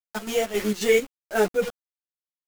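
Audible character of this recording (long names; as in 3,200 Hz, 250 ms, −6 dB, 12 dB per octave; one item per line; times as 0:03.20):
a quantiser's noise floor 6 bits, dither none
chopped level 3.7 Hz, depth 60%, duty 65%
a shimmering, thickened sound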